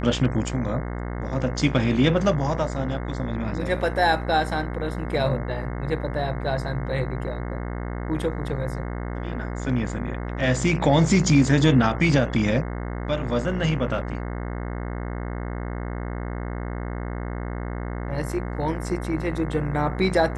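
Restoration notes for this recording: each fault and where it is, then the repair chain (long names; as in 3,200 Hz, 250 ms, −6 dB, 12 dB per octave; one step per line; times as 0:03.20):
mains buzz 60 Hz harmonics 36 −30 dBFS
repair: hum removal 60 Hz, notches 36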